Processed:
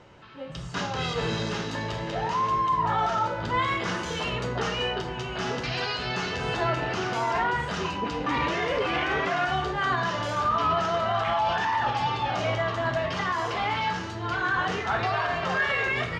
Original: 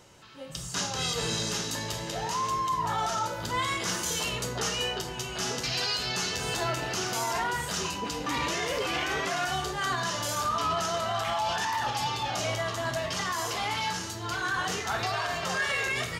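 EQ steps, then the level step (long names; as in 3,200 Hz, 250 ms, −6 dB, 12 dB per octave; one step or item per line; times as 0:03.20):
low-pass filter 2,600 Hz 12 dB per octave
+4.5 dB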